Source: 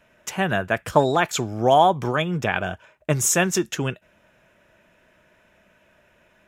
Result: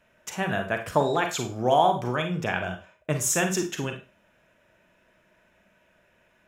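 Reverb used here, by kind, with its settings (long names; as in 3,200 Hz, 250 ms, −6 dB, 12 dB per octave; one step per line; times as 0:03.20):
four-comb reverb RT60 0.31 s, combs from 33 ms, DRR 5 dB
level −5.5 dB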